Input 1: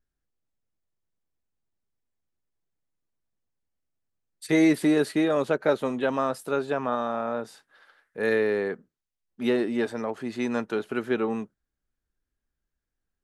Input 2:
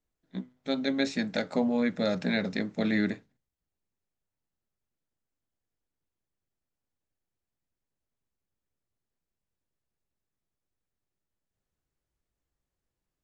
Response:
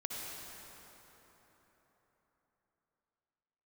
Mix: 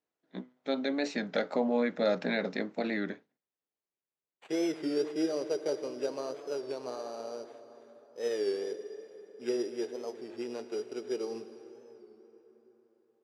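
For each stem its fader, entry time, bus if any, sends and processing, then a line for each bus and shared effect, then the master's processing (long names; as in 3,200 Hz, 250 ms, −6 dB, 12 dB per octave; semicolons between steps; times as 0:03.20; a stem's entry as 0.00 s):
+1.5 dB, 0.00 s, send −8.5 dB, drawn EQ curve 120 Hz 0 dB, 240 Hz −10 dB, 370 Hz −2 dB, 1,400 Hz −20 dB, 2,500 Hz −12 dB; flanger 1.1 Hz, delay 3.5 ms, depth 5.4 ms, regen +68%; sample-rate reduction 5,300 Hz, jitter 0%
+1.0 dB, 0.00 s, no send, tilt shelving filter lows +3.5 dB, about 1,400 Hz; brickwall limiter −16.5 dBFS, peak gain reduction 5.5 dB; automatic ducking −12 dB, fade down 1.85 s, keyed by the first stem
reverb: on, RT60 4.2 s, pre-delay 53 ms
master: band-pass filter 360–5,700 Hz; wow of a warped record 33 1/3 rpm, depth 100 cents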